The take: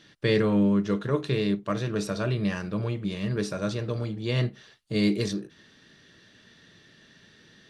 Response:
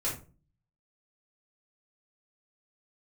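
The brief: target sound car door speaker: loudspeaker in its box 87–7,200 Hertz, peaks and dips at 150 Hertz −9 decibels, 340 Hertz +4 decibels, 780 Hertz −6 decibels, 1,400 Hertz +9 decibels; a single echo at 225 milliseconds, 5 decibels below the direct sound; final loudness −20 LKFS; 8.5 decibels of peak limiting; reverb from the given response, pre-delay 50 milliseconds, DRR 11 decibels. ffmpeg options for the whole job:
-filter_complex "[0:a]alimiter=limit=-19.5dB:level=0:latency=1,aecho=1:1:225:0.562,asplit=2[link_01][link_02];[1:a]atrim=start_sample=2205,adelay=50[link_03];[link_02][link_03]afir=irnorm=-1:irlink=0,volume=-16.5dB[link_04];[link_01][link_04]amix=inputs=2:normalize=0,highpass=87,equalizer=frequency=150:width_type=q:width=4:gain=-9,equalizer=frequency=340:width_type=q:width=4:gain=4,equalizer=frequency=780:width_type=q:width=4:gain=-6,equalizer=frequency=1400:width_type=q:width=4:gain=9,lowpass=frequency=7200:width=0.5412,lowpass=frequency=7200:width=1.3066,volume=9dB"

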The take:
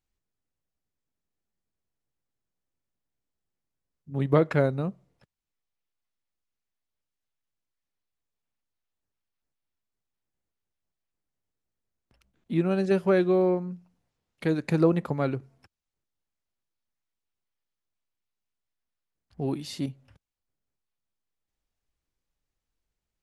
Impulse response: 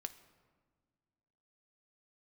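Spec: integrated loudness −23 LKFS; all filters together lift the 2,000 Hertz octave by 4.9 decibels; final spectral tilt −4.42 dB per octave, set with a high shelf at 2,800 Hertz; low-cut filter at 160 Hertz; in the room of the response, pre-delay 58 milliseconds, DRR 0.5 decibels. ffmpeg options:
-filter_complex "[0:a]highpass=160,equalizer=frequency=2000:width_type=o:gain=8.5,highshelf=frequency=2800:gain=-5.5,asplit=2[link_01][link_02];[1:a]atrim=start_sample=2205,adelay=58[link_03];[link_02][link_03]afir=irnorm=-1:irlink=0,volume=2.5dB[link_04];[link_01][link_04]amix=inputs=2:normalize=0,volume=1dB"

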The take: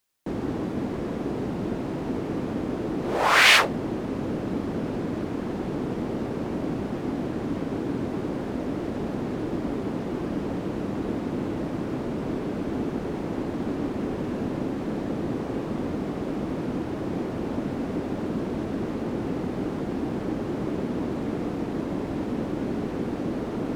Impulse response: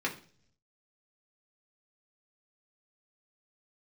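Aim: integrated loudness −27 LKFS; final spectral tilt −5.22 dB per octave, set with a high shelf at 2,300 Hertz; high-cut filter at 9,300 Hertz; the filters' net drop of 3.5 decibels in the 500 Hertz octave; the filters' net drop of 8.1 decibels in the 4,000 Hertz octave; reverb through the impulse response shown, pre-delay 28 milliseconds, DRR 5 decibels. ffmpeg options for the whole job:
-filter_complex "[0:a]lowpass=9300,equalizer=frequency=500:width_type=o:gain=-4.5,highshelf=frequency=2300:gain=-5,equalizer=frequency=4000:width_type=o:gain=-6.5,asplit=2[link_01][link_02];[1:a]atrim=start_sample=2205,adelay=28[link_03];[link_02][link_03]afir=irnorm=-1:irlink=0,volume=-12dB[link_04];[link_01][link_04]amix=inputs=2:normalize=0,volume=2dB"

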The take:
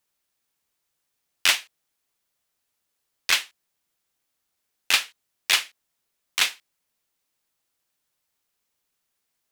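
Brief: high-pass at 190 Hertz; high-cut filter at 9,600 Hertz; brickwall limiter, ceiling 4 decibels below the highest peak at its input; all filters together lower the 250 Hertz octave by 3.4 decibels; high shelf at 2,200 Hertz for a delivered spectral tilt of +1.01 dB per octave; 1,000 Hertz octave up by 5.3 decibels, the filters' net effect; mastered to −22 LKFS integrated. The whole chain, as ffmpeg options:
ffmpeg -i in.wav -af "highpass=190,lowpass=9600,equalizer=frequency=250:width_type=o:gain=-4,equalizer=frequency=1000:width_type=o:gain=4.5,highshelf=frequency=2200:gain=9,volume=-3dB,alimiter=limit=-5dB:level=0:latency=1" out.wav

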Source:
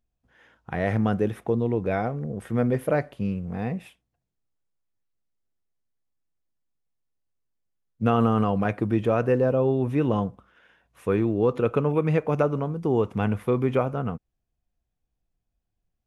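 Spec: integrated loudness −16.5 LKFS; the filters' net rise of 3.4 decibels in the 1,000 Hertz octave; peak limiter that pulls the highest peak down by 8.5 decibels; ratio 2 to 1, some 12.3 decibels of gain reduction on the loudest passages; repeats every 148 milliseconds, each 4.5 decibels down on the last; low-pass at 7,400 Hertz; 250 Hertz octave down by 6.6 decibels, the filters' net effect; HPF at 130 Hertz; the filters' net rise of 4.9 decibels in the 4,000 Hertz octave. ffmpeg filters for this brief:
ffmpeg -i in.wav -af "highpass=130,lowpass=7400,equalizer=frequency=250:width_type=o:gain=-8.5,equalizer=frequency=1000:width_type=o:gain=5,equalizer=frequency=4000:width_type=o:gain=7,acompressor=threshold=-41dB:ratio=2,alimiter=level_in=3dB:limit=-24dB:level=0:latency=1,volume=-3dB,aecho=1:1:148|296|444|592|740|888|1036|1184|1332:0.596|0.357|0.214|0.129|0.0772|0.0463|0.0278|0.0167|0.01,volume=21.5dB" out.wav

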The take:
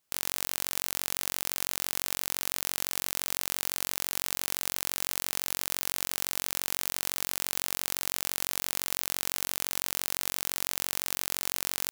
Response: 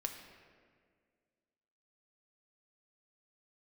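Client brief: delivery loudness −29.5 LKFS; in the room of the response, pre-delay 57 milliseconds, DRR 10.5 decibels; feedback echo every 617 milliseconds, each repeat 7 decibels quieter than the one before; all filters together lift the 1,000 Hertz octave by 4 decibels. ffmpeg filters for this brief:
-filter_complex "[0:a]equalizer=frequency=1000:width_type=o:gain=5,aecho=1:1:617|1234|1851|2468|3085:0.447|0.201|0.0905|0.0407|0.0183,asplit=2[link_01][link_02];[1:a]atrim=start_sample=2205,adelay=57[link_03];[link_02][link_03]afir=irnorm=-1:irlink=0,volume=-10dB[link_04];[link_01][link_04]amix=inputs=2:normalize=0,volume=-1dB"

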